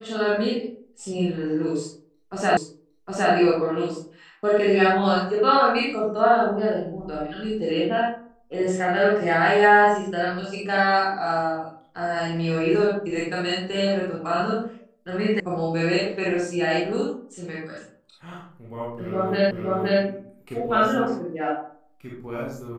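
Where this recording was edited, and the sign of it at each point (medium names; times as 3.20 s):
2.57 s: repeat of the last 0.76 s
15.40 s: sound stops dead
19.51 s: repeat of the last 0.52 s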